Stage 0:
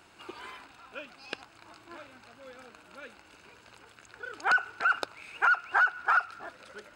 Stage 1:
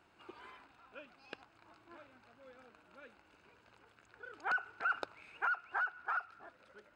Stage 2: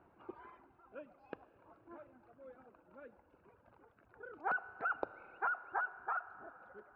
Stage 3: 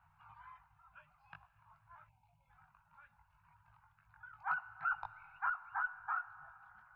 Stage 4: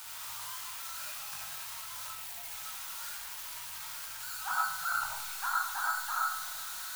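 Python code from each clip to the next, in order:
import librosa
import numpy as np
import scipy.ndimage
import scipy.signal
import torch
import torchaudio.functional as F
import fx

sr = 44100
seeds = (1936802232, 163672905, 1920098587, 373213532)

y1 = fx.high_shelf(x, sr, hz=4000.0, db=-12.0)
y1 = fx.rider(y1, sr, range_db=4, speed_s=0.5)
y1 = y1 * 10.0 ** (-8.5 / 20.0)
y2 = scipy.signal.sosfilt(scipy.signal.butter(2, 1000.0, 'lowpass', fs=sr, output='sos'), y1)
y2 = fx.dereverb_blind(y2, sr, rt60_s=1.7)
y2 = fx.rev_schroeder(y2, sr, rt60_s=4.0, comb_ms=26, drr_db=14.0)
y2 = y2 * 10.0 ** (5.0 / 20.0)
y3 = scipy.signal.sosfilt(scipy.signal.ellip(3, 1.0, 50, [150.0, 900.0], 'bandstop', fs=sr, output='sos'), y2)
y3 = fx.spec_box(y3, sr, start_s=2.07, length_s=0.43, low_hz=1000.0, high_hz=2100.0, gain_db=-21)
y3 = fx.chorus_voices(y3, sr, voices=6, hz=0.59, base_ms=20, depth_ms=1.6, mix_pct=40)
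y3 = y3 * 10.0 ** (4.0 / 20.0)
y4 = y3 + 0.5 * 10.0 ** (-32.0 / 20.0) * np.diff(np.sign(y3), prepend=np.sign(y3[:1]))
y4 = fx.rev_freeverb(y4, sr, rt60_s=0.69, hf_ratio=0.5, predelay_ms=30, drr_db=-3.5)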